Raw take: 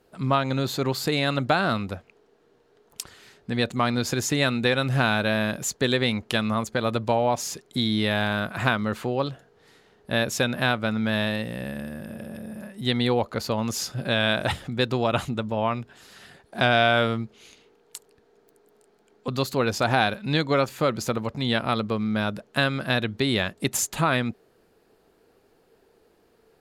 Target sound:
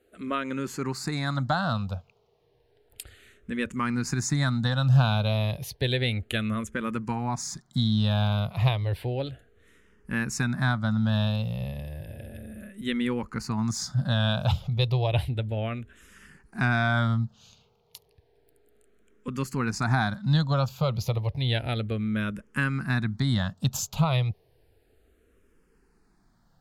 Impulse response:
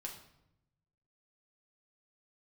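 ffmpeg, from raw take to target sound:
-filter_complex "[0:a]asubboost=boost=5:cutoff=150,asplit=2[a][b];[b]afreqshift=-0.32[c];[a][c]amix=inputs=2:normalize=1,volume=-2dB"

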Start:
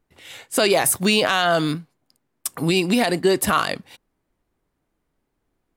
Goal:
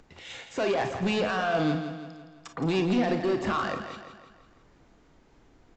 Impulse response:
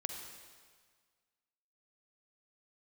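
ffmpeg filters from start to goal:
-filter_complex "[0:a]acrossover=split=150|2600[a][b][c];[c]acompressor=threshold=-39dB:ratio=6[d];[a][b][d]amix=inputs=3:normalize=0,alimiter=limit=-12.5dB:level=0:latency=1,acompressor=mode=upward:threshold=-42dB:ratio=2.5,aresample=16000,asoftclip=type=tanh:threshold=-20.5dB,aresample=44100,aecho=1:1:167|334|501|668|835|1002:0.335|0.167|0.0837|0.0419|0.0209|0.0105[e];[1:a]atrim=start_sample=2205,atrim=end_sample=3969,asetrate=66150,aresample=44100[f];[e][f]afir=irnorm=-1:irlink=0,volume=3dB"

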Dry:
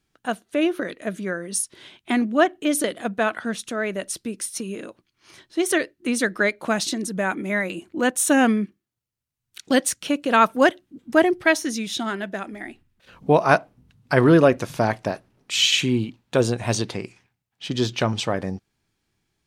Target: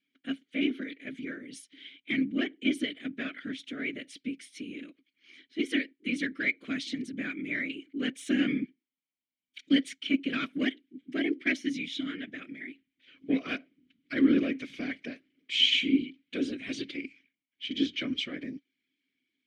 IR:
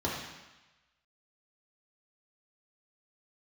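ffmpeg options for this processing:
-filter_complex "[0:a]asplit=2[a][b];[b]highpass=f=720:p=1,volume=14dB,asoftclip=type=tanh:threshold=-1dB[c];[a][c]amix=inputs=2:normalize=0,lowpass=f=6.9k:p=1,volume=-6dB,afftfilt=real='hypot(re,im)*cos(2*PI*random(0))':imag='hypot(re,im)*sin(2*PI*random(1))':win_size=512:overlap=0.75,asplit=3[d][e][f];[d]bandpass=f=270:t=q:w=8,volume=0dB[g];[e]bandpass=f=2.29k:t=q:w=8,volume=-6dB[h];[f]bandpass=f=3.01k:t=q:w=8,volume=-9dB[i];[g][h][i]amix=inputs=3:normalize=0,volume=5.5dB"

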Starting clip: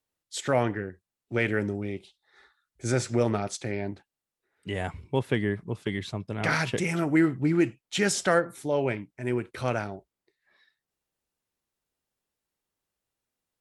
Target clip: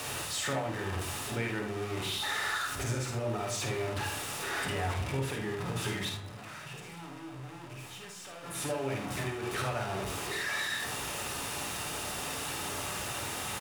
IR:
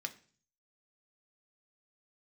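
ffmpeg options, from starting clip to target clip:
-filter_complex "[0:a]aeval=exprs='val(0)+0.5*0.0562*sgn(val(0))':c=same,acompressor=threshold=-27dB:ratio=10,asettb=1/sr,asplit=3[a][b][c];[a]atrim=end=6.094[d];[b]atrim=start=6.09:end=8.44,asetpts=PTS-STARTPTS,afade=t=in:d=0.004:c=qsin,afade=t=out:st=2.346:d=0.004:c=qsin,aeval=exprs='(tanh(126*val(0)+0.3)-tanh(0.3))/126':c=same[e];[c]atrim=start=8.436[f];[d][e]acrossfade=d=0.004:c1=hsin:c2=qsin[g];[g][f]acrossfade=d=0.004:c1=qsin:c2=hsin,aecho=1:1:52|77:0.531|0.335[h];[1:a]atrim=start_sample=2205,asetrate=22050,aresample=44100[i];[h][i]afir=irnorm=-1:irlink=0,volume=-7dB"

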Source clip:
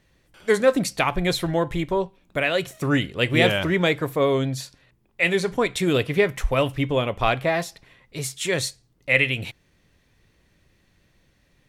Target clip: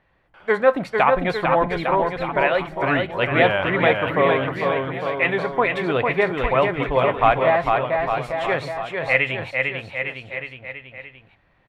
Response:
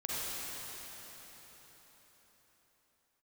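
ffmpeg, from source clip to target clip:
-filter_complex "[0:a]firequalizer=gain_entry='entry(320,0);entry(770,12);entry(6400,-19)':delay=0.05:min_phase=1,asplit=2[a][b];[b]aecho=0:1:450|855|1220|1548|1843:0.631|0.398|0.251|0.158|0.1[c];[a][c]amix=inputs=2:normalize=0,volume=-4dB"

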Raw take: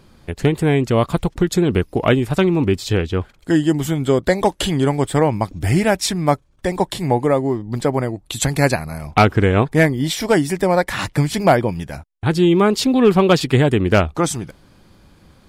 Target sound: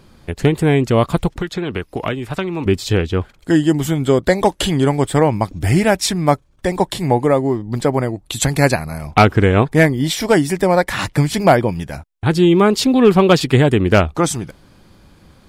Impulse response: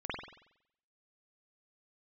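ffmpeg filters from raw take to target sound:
-filter_complex "[0:a]asettb=1/sr,asplit=3[a][b][c];[a]atrim=end=1.334[d];[b]atrim=start=1.33:end=2.66,asetpts=PTS-STARTPTS,afade=t=in:d=0.004:c=qsin,afade=t=out:st=1.326:d=0.004:c=qsin,acrossover=split=480|970|4100[e][f][g][h];[e]acompressor=threshold=-26dB:ratio=4[i];[f]acompressor=threshold=-31dB:ratio=4[j];[g]acompressor=threshold=-27dB:ratio=4[k];[h]acompressor=threshold=-49dB:ratio=4[l];[i][j][k][l]amix=inputs=4:normalize=0[m];[c]atrim=start=2.656[n];[d][m]acrossfade=d=0.004:c1=hsin:c2=qsin[o];[o][n]acrossfade=d=0.004:c1=qsin:c2=hsin,volume=2dB"

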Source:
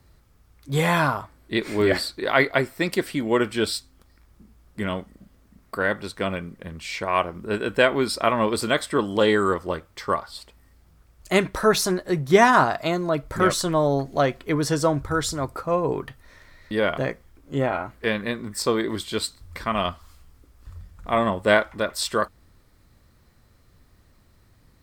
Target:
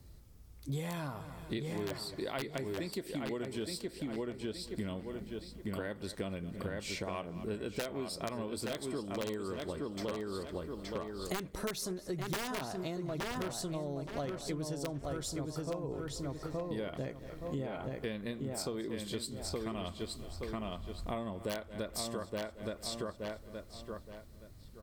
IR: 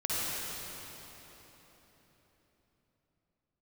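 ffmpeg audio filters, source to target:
-filter_complex "[0:a]equalizer=f=1.4k:t=o:w=2.1:g=-10.5,asplit=2[a][b];[b]aecho=0:1:223|446|669:0.0891|0.0392|0.0173[c];[a][c]amix=inputs=2:normalize=0,aeval=exprs='(mod(4.22*val(0)+1,2)-1)/4.22':c=same,asplit=2[d][e];[e]adelay=871,lowpass=f=4.2k:p=1,volume=-5dB,asplit=2[f][g];[g]adelay=871,lowpass=f=4.2k:p=1,volume=0.25,asplit=2[h][i];[i]adelay=871,lowpass=f=4.2k:p=1,volume=0.25[j];[f][h][j]amix=inputs=3:normalize=0[k];[d][k]amix=inputs=2:normalize=0,acompressor=threshold=-36dB:ratio=10,volume=1dB"

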